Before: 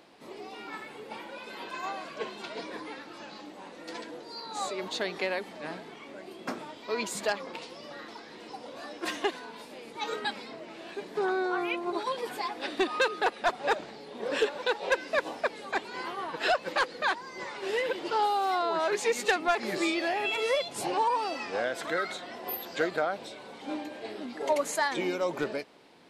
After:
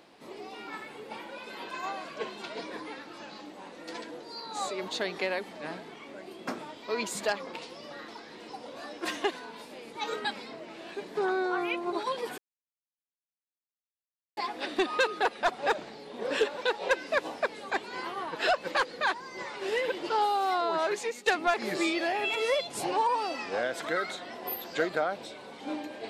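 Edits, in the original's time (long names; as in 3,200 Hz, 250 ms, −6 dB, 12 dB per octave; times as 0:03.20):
0:12.38: splice in silence 1.99 s
0:18.84–0:19.27: fade out, to −18 dB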